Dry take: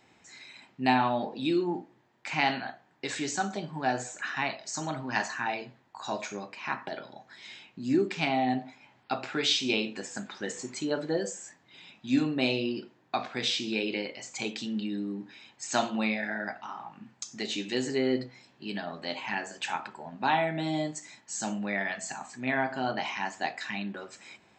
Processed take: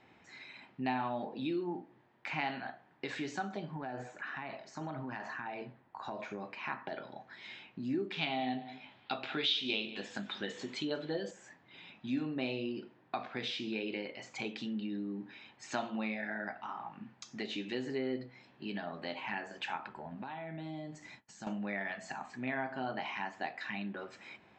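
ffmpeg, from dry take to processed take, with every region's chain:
-filter_complex "[0:a]asettb=1/sr,asplit=3[a][b][c];[a]atrim=end=3.744[d];[b]atrim=start=3.74:end=6.45,asetpts=PTS-STARTPTS,afade=t=in:d=0.004:c=qsin,afade=t=out:st=2.706:d=0.004:c=qsin,acompressor=threshold=-33dB:ratio=5:attack=3.2:release=140:knee=1:detection=peak,highshelf=f=2.7k:g=-8.5[e];[c]atrim=start=6.446[f];[d][e]acrossfade=d=0.004:c1=hsin:c2=qsin[g];[g][f]acrossfade=d=0.004:c1=qsin:c2=hsin,asettb=1/sr,asplit=3[h][i][j];[h]atrim=end=8.124[k];[i]atrim=start=8.12:end=11.31,asetpts=PTS-STARTPTS,afade=t=in:d=0.004:c=qsin,afade=t=out:st=3.186:d=0.004:c=qsin,equalizer=f=3.5k:t=o:w=0.75:g=13,asplit=2[l][m];[m]adelay=20,volume=-13dB[n];[l][n]amix=inputs=2:normalize=0,atrim=end_sample=140679,aecho=1:1:188:0.119,atrim=end_sample=140679[o];[j]atrim=start=11.306[p];[k][o]acrossfade=d=0.004:c1=hsin:c2=qsin[q];[q][p]acrossfade=d=0.004:c1=qsin:c2=hsin,asettb=1/sr,asplit=3[r][s][t];[r]atrim=end=19.894[u];[s]atrim=start=19.89:end=21.47,asetpts=PTS-STARTPTS,afade=t=in:d=0.004:c=qsin,afade=t=out:st=1.576:d=0.004:c=qsin,agate=range=-33dB:threshold=-51dB:ratio=3:release=100:detection=peak,lowshelf=f=110:g=11.5,acompressor=threshold=-39dB:ratio=8:attack=3.2:release=140:knee=1:detection=peak[v];[t]atrim=start=21.466[w];[u][v]acrossfade=d=0.004:c1=hsin:c2=qsin[x];[x][w]acrossfade=d=0.004:c1=qsin:c2=hsin,lowpass=3.2k,acompressor=threshold=-39dB:ratio=2"

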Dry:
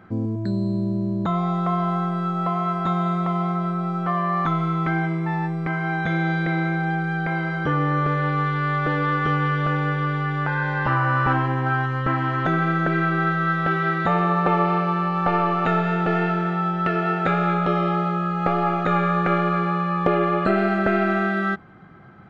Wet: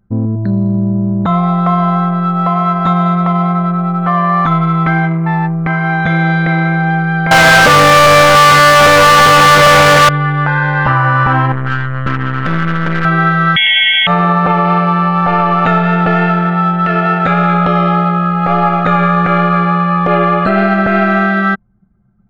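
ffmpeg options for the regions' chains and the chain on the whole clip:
-filter_complex "[0:a]asettb=1/sr,asplit=3[a][b][c];[a]atrim=end=7.314[d];[b]atrim=start=7.31:end=10.09,asetpts=PTS-STARTPTS,afade=t=in:d=0.004:c=qsin,afade=t=out:st=2.776:d=0.004:c=qsin,equalizer=f=590:t=o:w=0.37:g=12,asplit=2[e][f];[f]highpass=f=720:p=1,volume=41dB,asoftclip=type=tanh:threshold=-7.5dB[g];[e][g]amix=inputs=2:normalize=0,lowpass=f=4.2k:p=1,volume=-6dB[h];[c]atrim=start=10.086[i];[d][h]acrossfade=d=0.004:c1=hsin:c2=qsin[j];[j][i]acrossfade=d=0.004:c1=qsin:c2=hsin,asettb=1/sr,asplit=3[k][l][m];[k]atrim=end=11.524[n];[l]atrim=start=11.52:end=13.05,asetpts=PTS-STARTPTS,afade=t=in:d=0.004:c=qsin,afade=t=out:st=1.526:d=0.004:c=qsin,equalizer=f=790:w=2.2:g=-14.5,aeval=exprs='clip(val(0),-1,0.0188)':c=same[o];[m]atrim=start=13.046[p];[n][o]acrossfade=d=0.004:c1=hsin:c2=qsin[q];[q][p]acrossfade=d=0.004:c1=qsin:c2=hsin,asettb=1/sr,asplit=3[r][s][t];[r]atrim=end=13.564[u];[s]atrim=start=13.56:end=14.07,asetpts=PTS-STARTPTS,afade=t=in:d=0.004:c=qsin,afade=t=out:st=0.506:d=0.004:c=qsin,acontrast=37,asuperstop=centerf=2200:order=20:qfactor=4.1,lowpass=f=3k:t=q:w=0.5098,lowpass=f=3k:t=q:w=0.6013,lowpass=f=3k:t=q:w=0.9,lowpass=f=3k:t=q:w=2.563,afreqshift=-3500[v];[t]atrim=start=14.066[w];[u][v]acrossfade=d=0.004:c1=hsin:c2=qsin[x];[x][w]acrossfade=d=0.004:c1=qsin:c2=hsin,anlmdn=63.1,equalizer=f=360:t=o:w=0.59:g=-8,alimiter=level_in=12.5dB:limit=-1dB:release=50:level=0:latency=1,volume=-1dB"

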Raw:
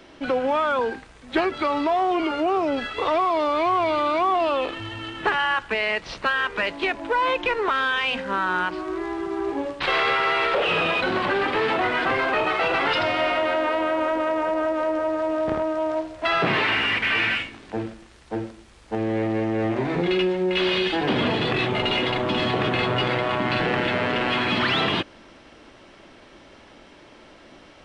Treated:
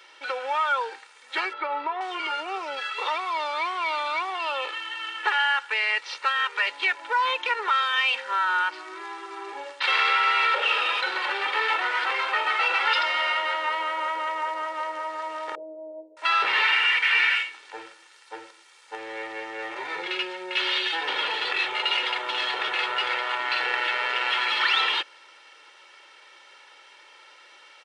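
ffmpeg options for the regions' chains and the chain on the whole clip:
-filter_complex "[0:a]asettb=1/sr,asplit=3[a][b][c];[a]atrim=end=1.534[d];[b]atrim=start=1.53:end=2.01,asetpts=PTS-STARTPTS,afade=t=in:d=0.004:c=qsin,afade=t=out:st=0.476:d=0.004:c=qsin,lowpass=2.5k,tiltshelf=f=1.1k:g=5.5[e];[c]atrim=start=2.006[f];[d][e]acrossfade=d=0.004:c1=hsin:c2=qsin[g];[g][f]acrossfade=d=0.004:c1=qsin:c2=hsin,asettb=1/sr,asplit=3[h][i][j];[h]atrim=end=15.554[k];[i]atrim=start=15.55:end=16.17,asetpts=PTS-STARTPTS,afade=t=in:d=0.004:c=qsin,afade=t=out:st=0.616:d=0.004:c=qsin,asuperpass=centerf=320:order=12:qfactor=0.69,aecho=1:1:6.3:0.5,atrim=end_sample=27342[l];[j]atrim=start=16.166[m];[k][l]acrossfade=d=0.004:c1=hsin:c2=qsin[n];[n][m]acrossfade=d=0.004:c1=qsin:c2=hsin,highpass=1.1k,aecho=1:1:2.2:0.72"

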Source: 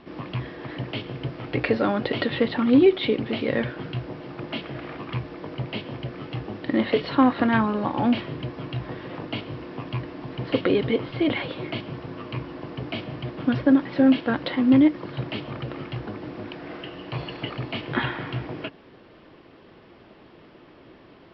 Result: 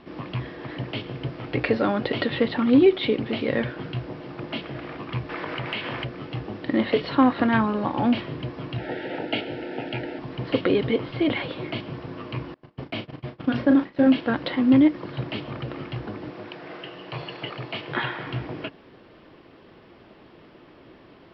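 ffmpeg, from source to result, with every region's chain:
-filter_complex "[0:a]asettb=1/sr,asplit=3[a][b][c];[a]atrim=end=5.294[d];[b]atrim=start=5.29:end=6.05,asetpts=PTS-STARTPTS,afade=t=in:d=0.004:c=qsin,afade=t=out:st=0.756:d=0.004:c=qsin,equalizer=f=1.8k:t=o:w=2.7:g=15,acompressor=threshold=-26dB:ratio=5:attack=3.2:release=140:knee=1:detection=peak[e];[c]atrim=start=6.046[f];[d][e]acrossfade=d=0.004:c1=hsin:c2=qsin[g];[g][f]acrossfade=d=0.004:c1=qsin:c2=hsin,asettb=1/sr,asplit=3[h][i][j];[h]atrim=end=8.784[k];[i]atrim=start=8.78:end=10.19,asetpts=PTS-STARTPTS,afade=t=in:d=0.004:c=qsin,afade=t=out:st=1.406:d=0.004:c=qsin,acrossover=split=260 4300:gain=0.2 1 0.178[l][m][n];[l][m][n]amix=inputs=3:normalize=0,acontrast=73,asuperstop=centerf=1100:order=12:qfactor=3[o];[j]atrim=start=10.186[p];[k][o]acrossfade=d=0.004:c1=hsin:c2=qsin[q];[q][p]acrossfade=d=0.004:c1=qsin:c2=hsin,asettb=1/sr,asplit=3[r][s][t];[r]atrim=end=12.544[u];[s]atrim=start=12.54:end=14.07,asetpts=PTS-STARTPTS,afade=t=in:d=0.004:c=qsin,afade=t=out:st=1.526:d=0.004:c=qsin,bandreject=f=60:t=h:w=6,bandreject=f=120:t=h:w=6,bandreject=f=180:t=h:w=6,bandreject=f=240:t=h:w=6,bandreject=f=300:t=h:w=6,bandreject=f=360:t=h:w=6,bandreject=f=420:t=h:w=6,bandreject=f=480:t=h:w=6,agate=range=-29dB:threshold=-34dB:ratio=16:release=100:detection=peak,asplit=2[v][w];[w]adelay=36,volume=-8dB[x];[v][x]amix=inputs=2:normalize=0,atrim=end_sample=67473[y];[t]atrim=start=14.066[z];[u][y]acrossfade=d=0.004:c1=hsin:c2=qsin[aa];[aa][z]acrossfade=d=0.004:c1=qsin:c2=hsin,asettb=1/sr,asplit=3[ab][ac][ad];[ab]atrim=end=16.304[ae];[ac]atrim=start=16.3:end=18.27,asetpts=PTS-STARTPTS,afade=t=in:d=0.004:c=qsin,afade=t=out:st=1.966:d=0.004:c=qsin,highpass=140,equalizer=f=250:w=2.7:g=-9[af];[ad]atrim=start=18.266[ag];[ae][af]acrossfade=d=0.004:c1=hsin:c2=qsin[ah];[ah][ag]acrossfade=d=0.004:c1=qsin:c2=hsin"

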